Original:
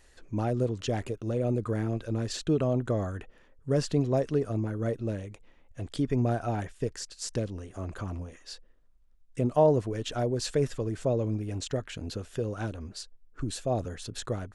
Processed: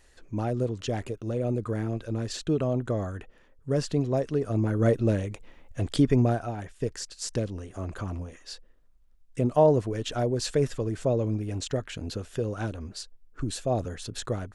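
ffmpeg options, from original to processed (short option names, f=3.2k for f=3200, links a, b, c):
-af "volume=15dB,afade=t=in:st=4.39:d=0.46:silence=0.398107,afade=t=out:st=5.96:d=0.59:silence=0.223872,afade=t=in:st=6.55:d=0.34:silence=0.446684"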